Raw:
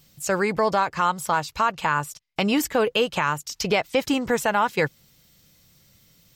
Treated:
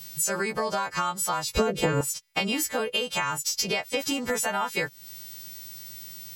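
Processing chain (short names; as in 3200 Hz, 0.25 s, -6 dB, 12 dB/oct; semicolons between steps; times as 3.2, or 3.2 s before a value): frequency quantiser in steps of 2 st; compressor 10:1, threshold -31 dBFS, peak gain reduction 16.5 dB; 1.55–2.01 resonant low shelf 650 Hz +13.5 dB, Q 3; gain +6.5 dB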